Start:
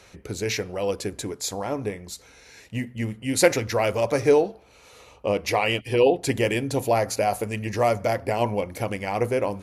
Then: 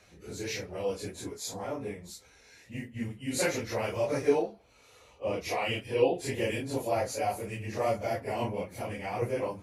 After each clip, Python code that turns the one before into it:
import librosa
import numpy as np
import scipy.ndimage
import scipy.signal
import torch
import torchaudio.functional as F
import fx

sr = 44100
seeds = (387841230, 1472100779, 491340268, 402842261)

y = fx.phase_scramble(x, sr, seeds[0], window_ms=100)
y = F.gain(torch.from_numpy(y), -8.0).numpy()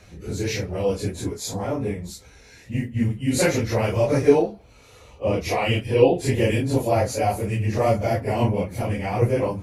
y = fx.low_shelf(x, sr, hz=240.0, db=11.5)
y = F.gain(torch.from_numpy(y), 6.5).numpy()